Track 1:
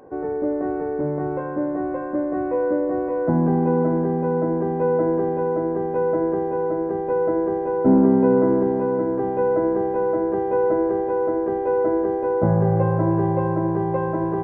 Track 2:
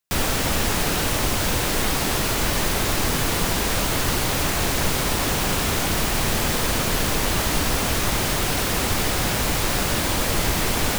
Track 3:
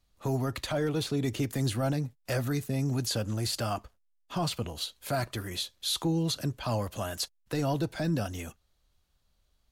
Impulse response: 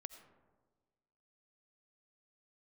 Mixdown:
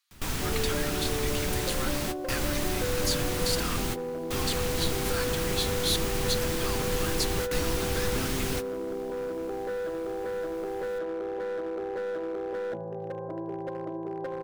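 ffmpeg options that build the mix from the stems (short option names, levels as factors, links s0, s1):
-filter_complex "[0:a]acompressor=threshold=0.0708:ratio=12,bandpass=f=550:t=q:w=1.8:csg=0,asoftclip=type=hard:threshold=0.0473,adelay=300,volume=1.12[s0];[1:a]acrossover=split=330[s1][s2];[s2]acompressor=threshold=0.0562:ratio=6[s3];[s1][s3]amix=inputs=2:normalize=0,volume=0.473,asplit=2[s4][s5];[s5]volume=0.133[s6];[2:a]highpass=f=1100:w=0.5412,highpass=f=1100:w=1.3066,volume=1.33,asplit=2[s7][s8];[s8]apad=whole_len=484423[s9];[s4][s9]sidechaingate=range=0.0178:threshold=0.00141:ratio=16:detection=peak[s10];[3:a]atrim=start_sample=2205[s11];[s6][s11]afir=irnorm=-1:irlink=0[s12];[s0][s10][s7][s12]amix=inputs=4:normalize=0,equalizer=f=600:w=1.4:g=-5.5"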